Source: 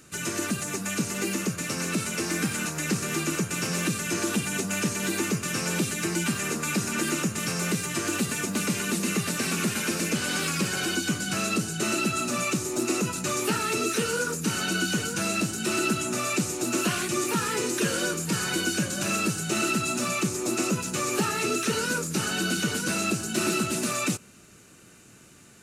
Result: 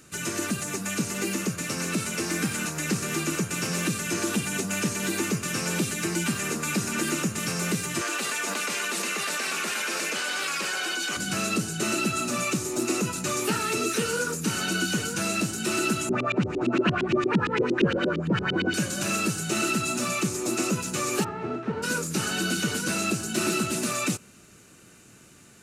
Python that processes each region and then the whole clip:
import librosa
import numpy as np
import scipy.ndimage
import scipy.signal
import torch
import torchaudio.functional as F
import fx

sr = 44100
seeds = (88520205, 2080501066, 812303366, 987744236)

y = fx.chain(x, sr, fx.highpass(hz=600.0, slope=12),
    fx.high_shelf(hz=6300.0, db=-8.5),
    fx.env_flatten(amount_pct=100), at=(8.01, 11.17))
y = fx.chain(y, sr, fx.low_shelf(hz=140.0, db=8.0),
    fx.filter_lfo_lowpass(shape='saw_up', hz=8.7, low_hz=250.0, high_hz=3500.0, q=2.7), at=(16.09, 18.74))
y = fx.envelope_flatten(y, sr, power=0.6, at=(21.23, 21.82), fade=0.02)
y = fx.lowpass(y, sr, hz=1000.0, slope=12, at=(21.23, 21.82), fade=0.02)